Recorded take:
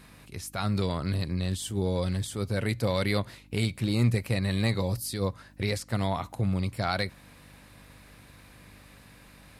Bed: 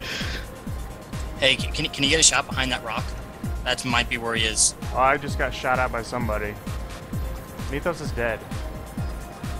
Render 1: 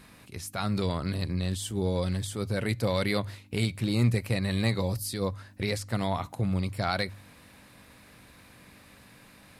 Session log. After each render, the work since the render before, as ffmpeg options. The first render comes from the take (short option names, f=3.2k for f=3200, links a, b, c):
-af "bandreject=f=50:t=h:w=4,bandreject=f=100:t=h:w=4,bandreject=f=150:t=h:w=4"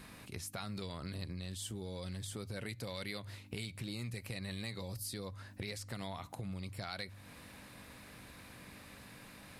-filter_complex "[0:a]acrossover=split=1900[a][b];[a]alimiter=level_in=1.5dB:limit=-24dB:level=0:latency=1:release=155,volume=-1.5dB[c];[c][b]amix=inputs=2:normalize=0,acompressor=threshold=-43dB:ratio=2.5"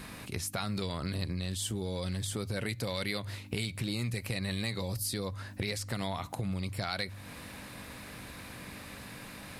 -af "volume=8dB"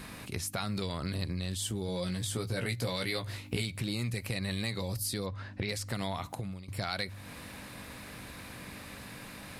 -filter_complex "[0:a]asettb=1/sr,asplit=3[a][b][c];[a]atrim=end=1.874[d];[b]atrim=start=1.87:end=3.62,asetpts=PTS-STARTPTS,afade=t=in:d=0.004:c=qsin,afade=t=out:st=1.746:d=0.004:c=qsin,asplit=2[e][f];[f]adelay=17,volume=-5dB[g];[e][g]amix=inputs=2:normalize=0,atrim=end_sample=77175[h];[c]atrim=start=3.616[i];[d][h]acrossfade=d=0.004:c1=hsin:c2=qsin[j];[j][i]acrossfade=d=0.004:c1=qsin:c2=hsin,asettb=1/sr,asplit=3[k][l][m];[k]atrim=end=5.264[n];[l]atrim=start=5.26:end=5.69,asetpts=PTS-STARTPTS,afade=t=in:d=0.004:c=qsin,afade=t=out:st=0.426:d=0.004:c=qsin,lowpass=4.1k[o];[m]atrim=start=5.686[p];[n][o]acrossfade=d=0.004:c1=hsin:c2=qsin[q];[q][p]acrossfade=d=0.004:c1=qsin:c2=hsin,asplit=2[r][s];[r]atrim=end=6.68,asetpts=PTS-STARTPTS,afade=t=out:st=6.28:d=0.4:silence=0.133352[t];[s]atrim=start=6.68,asetpts=PTS-STARTPTS,afade=t=in:d=0.004:c=hsin:silence=0.133352[u];[t][u]concat=n=2:v=0:a=1"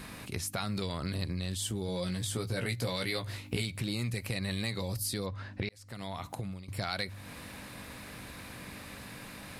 -filter_complex "[0:a]asplit=2[a][b];[a]atrim=end=5.69,asetpts=PTS-STARTPTS,afade=t=out:st=5.686:d=0.004:c=hsin[c];[b]atrim=start=5.69,asetpts=PTS-STARTPTS,afade=t=in:d=0.68[d];[c][d]concat=n=2:v=0:a=1"